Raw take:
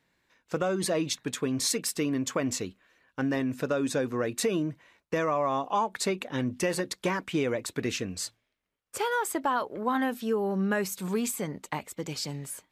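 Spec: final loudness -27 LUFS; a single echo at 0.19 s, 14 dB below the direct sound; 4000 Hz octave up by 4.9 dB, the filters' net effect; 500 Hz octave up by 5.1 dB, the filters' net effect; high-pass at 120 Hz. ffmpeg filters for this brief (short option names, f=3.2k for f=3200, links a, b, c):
-af "highpass=120,equalizer=f=500:t=o:g=6,equalizer=f=4k:t=o:g=6,aecho=1:1:190:0.2"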